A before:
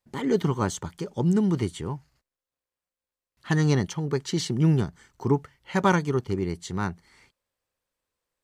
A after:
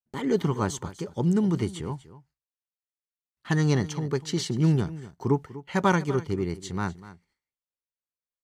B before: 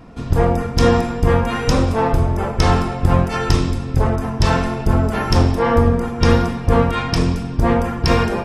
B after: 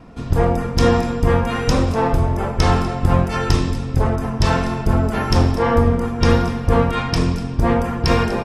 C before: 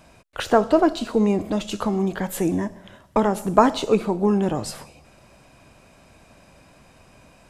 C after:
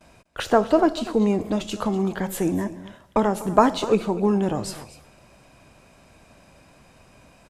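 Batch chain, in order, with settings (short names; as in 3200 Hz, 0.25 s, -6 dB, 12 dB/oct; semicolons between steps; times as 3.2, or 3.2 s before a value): gate with hold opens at -44 dBFS; on a send: echo 0.246 s -16.5 dB; on the sum: gain -1 dB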